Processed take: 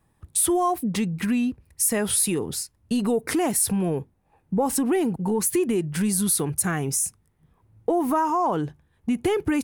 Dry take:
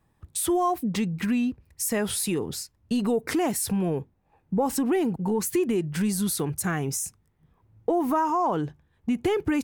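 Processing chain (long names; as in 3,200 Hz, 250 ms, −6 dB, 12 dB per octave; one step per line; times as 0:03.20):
parametric band 10,000 Hz +8.5 dB 0.38 octaves
level +1.5 dB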